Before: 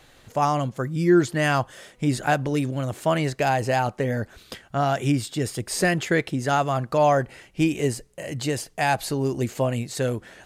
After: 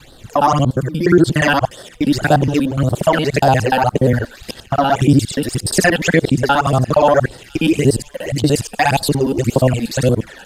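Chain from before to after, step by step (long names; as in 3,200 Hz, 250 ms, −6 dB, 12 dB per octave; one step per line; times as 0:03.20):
reversed piece by piece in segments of 59 ms
all-pass phaser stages 12, 1.8 Hz, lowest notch 110–2,400 Hz
delay with a high-pass on its return 1,005 ms, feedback 62%, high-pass 3,200 Hz, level −17.5 dB
boost into a limiter +13 dB
level −1 dB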